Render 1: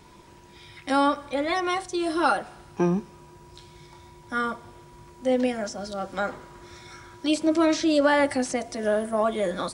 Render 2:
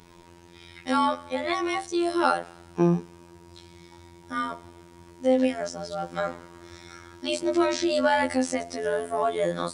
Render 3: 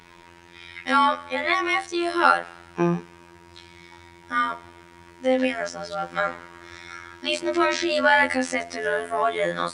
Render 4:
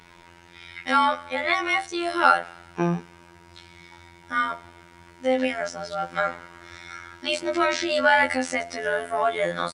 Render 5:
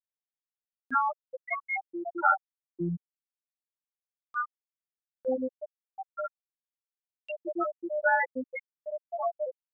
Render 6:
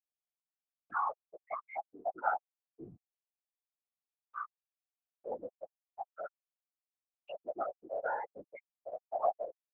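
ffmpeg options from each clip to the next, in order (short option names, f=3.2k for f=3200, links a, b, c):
-af "afftfilt=real='hypot(re,im)*cos(PI*b)':imag='0':win_size=2048:overlap=0.75,volume=2.5dB"
-af "equalizer=f=1.9k:w=0.65:g=12,volume=-2dB"
-filter_complex "[0:a]asplit=2[a][b];[b]adelay=13,volume=-12dB[c];[a][c]amix=inputs=2:normalize=0,volume=-1dB"
-af "afftfilt=real='re*gte(hypot(re,im),0.501)':imag='im*gte(hypot(re,im),0.501)':win_size=1024:overlap=0.75,acompressor=mode=upward:threshold=-40dB:ratio=2.5,volume=-4.5dB"
-filter_complex "[0:a]asplit=3[a][b][c];[a]bandpass=f=730:t=q:w=8,volume=0dB[d];[b]bandpass=f=1.09k:t=q:w=8,volume=-6dB[e];[c]bandpass=f=2.44k:t=q:w=8,volume=-9dB[f];[d][e][f]amix=inputs=3:normalize=0,afftfilt=real='hypot(re,im)*cos(2*PI*random(0))':imag='hypot(re,im)*sin(2*PI*random(1))':win_size=512:overlap=0.75,volume=8.5dB"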